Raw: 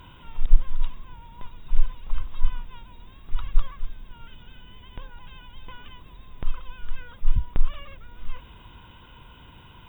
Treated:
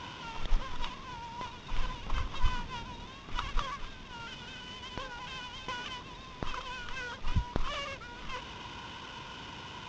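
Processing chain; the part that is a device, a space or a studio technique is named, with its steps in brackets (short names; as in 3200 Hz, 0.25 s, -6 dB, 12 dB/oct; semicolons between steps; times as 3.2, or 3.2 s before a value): early wireless headset (HPF 240 Hz 6 dB/oct; CVSD 32 kbps); 1.83–3.06 low shelf 250 Hz +6 dB; gain +7.5 dB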